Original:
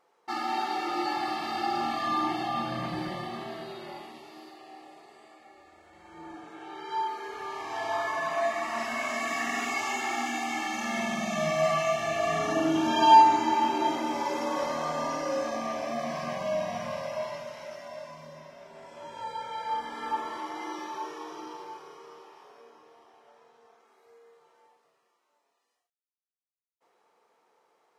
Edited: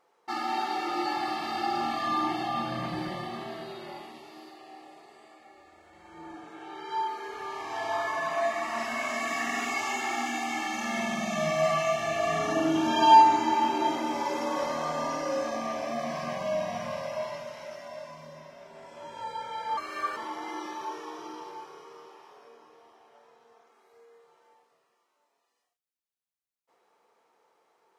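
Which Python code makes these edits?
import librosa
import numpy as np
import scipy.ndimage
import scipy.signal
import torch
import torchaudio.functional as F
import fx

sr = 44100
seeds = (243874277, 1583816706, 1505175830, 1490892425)

y = fx.edit(x, sr, fx.speed_span(start_s=19.77, length_s=0.53, speed=1.33), tone=tone)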